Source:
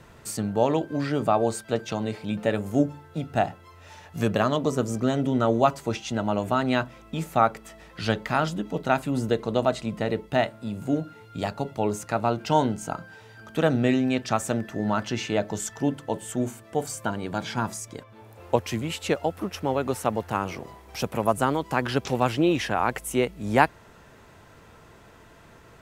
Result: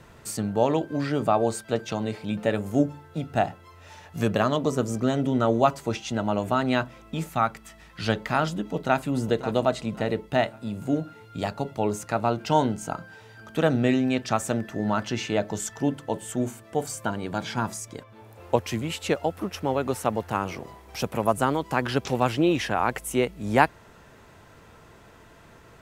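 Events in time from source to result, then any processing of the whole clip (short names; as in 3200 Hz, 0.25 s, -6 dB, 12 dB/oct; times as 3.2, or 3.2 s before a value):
7.29–8 bell 480 Hz -9.5 dB 1.3 oct
8.65–9.08 echo throw 0.54 s, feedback 35%, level -12.5 dB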